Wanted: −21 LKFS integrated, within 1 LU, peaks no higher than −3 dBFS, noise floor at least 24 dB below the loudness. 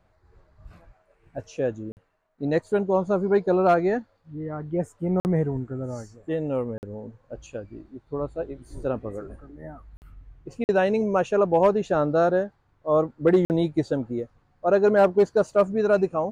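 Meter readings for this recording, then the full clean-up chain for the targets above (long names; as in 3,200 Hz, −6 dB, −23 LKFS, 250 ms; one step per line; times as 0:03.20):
number of dropouts 6; longest dropout 49 ms; integrated loudness −24.0 LKFS; sample peak −10.0 dBFS; target loudness −21.0 LKFS
→ repair the gap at 0:01.92/0:05.20/0:06.78/0:09.97/0:10.64/0:13.45, 49 ms
level +3 dB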